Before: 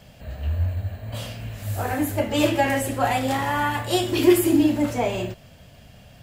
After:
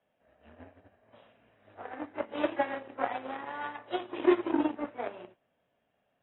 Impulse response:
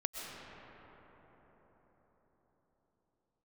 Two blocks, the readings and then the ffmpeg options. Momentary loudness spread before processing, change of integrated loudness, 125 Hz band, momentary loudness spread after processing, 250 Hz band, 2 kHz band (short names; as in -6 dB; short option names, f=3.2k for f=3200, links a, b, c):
15 LU, -10.0 dB, -31.5 dB, 14 LU, -11.5 dB, -12.0 dB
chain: -filter_complex "[0:a]aeval=exprs='0.562*(cos(1*acos(clip(val(0)/0.562,-1,1)))-cos(1*PI/2))+0.0447*(cos(3*acos(clip(val(0)/0.562,-1,1)))-cos(3*PI/2))+0.0126*(cos(4*acos(clip(val(0)/0.562,-1,1)))-cos(4*PI/2))+0.00891*(cos(5*acos(clip(val(0)/0.562,-1,1)))-cos(5*PI/2))+0.0562*(cos(7*acos(clip(val(0)/0.562,-1,1)))-cos(7*PI/2))':c=same,acrossover=split=260 2100:gain=0.0631 1 0.224[a][b][c];[a][b][c]amix=inputs=3:normalize=0,volume=-5dB" -ar 22050 -c:a aac -b:a 16k